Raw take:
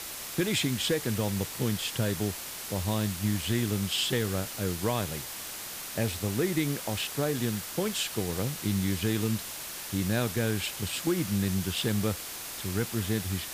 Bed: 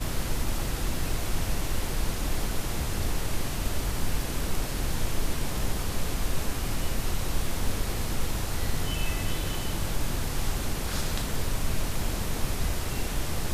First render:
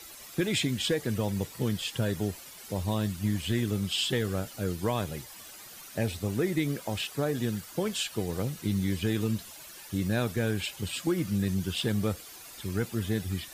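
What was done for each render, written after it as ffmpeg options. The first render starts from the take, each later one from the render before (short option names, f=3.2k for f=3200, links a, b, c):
-af "afftdn=nr=12:nf=-40"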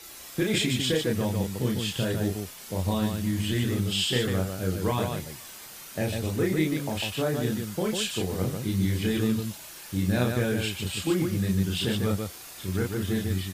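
-af "aecho=1:1:32.07|148.7:0.794|0.631"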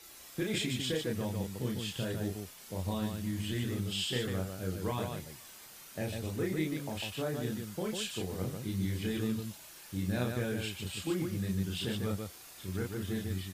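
-af "volume=-8dB"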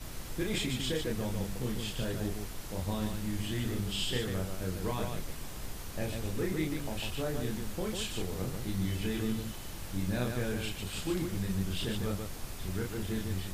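-filter_complex "[1:a]volume=-13dB[a];[0:a][a]amix=inputs=2:normalize=0"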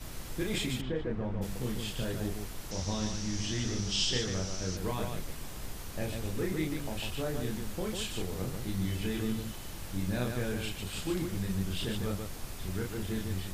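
-filter_complex "[0:a]asplit=3[a][b][c];[a]afade=t=out:st=0.8:d=0.02[d];[b]lowpass=1.6k,afade=t=in:st=0.8:d=0.02,afade=t=out:st=1.41:d=0.02[e];[c]afade=t=in:st=1.41:d=0.02[f];[d][e][f]amix=inputs=3:normalize=0,asettb=1/sr,asplit=3[g][h][i];[g]atrim=end=2.714[j];[h]atrim=start=2.71:end=4.77,asetpts=PTS-STARTPTS,afade=t=in:d=0.004:c=qsin,afade=t=out:st=2.056:d=0.004:c=qsin,lowpass=f=5.8k:t=q:w=7.1[k];[i]atrim=start=4.766[l];[j][k]acrossfade=d=0.004:c1=hsin:c2=qsin[m];[m][l]acrossfade=d=0.004:c1=qsin:c2=hsin"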